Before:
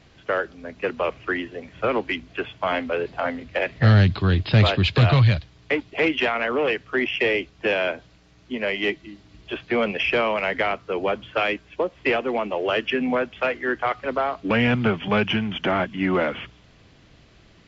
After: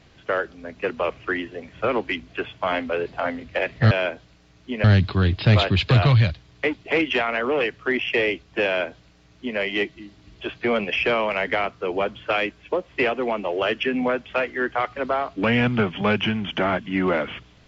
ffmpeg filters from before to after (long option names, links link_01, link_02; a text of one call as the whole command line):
ffmpeg -i in.wav -filter_complex "[0:a]asplit=3[link_01][link_02][link_03];[link_01]atrim=end=3.912[link_04];[link_02]atrim=start=7.728:end=8.662[link_05];[link_03]atrim=start=3.908[link_06];[link_04][link_05]acrossfade=duration=0.004:curve1=hsin:curve2=hsin[link_07];[link_07][link_06]acrossfade=duration=0.004:curve1=hsin:curve2=hsin" out.wav